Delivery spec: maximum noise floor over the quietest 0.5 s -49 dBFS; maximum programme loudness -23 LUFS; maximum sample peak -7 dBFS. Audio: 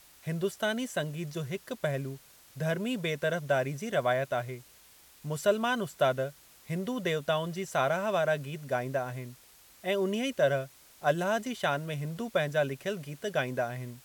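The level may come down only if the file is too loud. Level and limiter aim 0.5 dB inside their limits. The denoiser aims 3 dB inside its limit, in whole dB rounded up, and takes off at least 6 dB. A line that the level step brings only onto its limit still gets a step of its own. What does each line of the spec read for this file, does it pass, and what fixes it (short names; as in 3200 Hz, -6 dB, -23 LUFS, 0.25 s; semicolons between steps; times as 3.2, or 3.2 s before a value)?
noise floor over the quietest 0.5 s -57 dBFS: OK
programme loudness -31.5 LUFS: OK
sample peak -13.5 dBFS: OK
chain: none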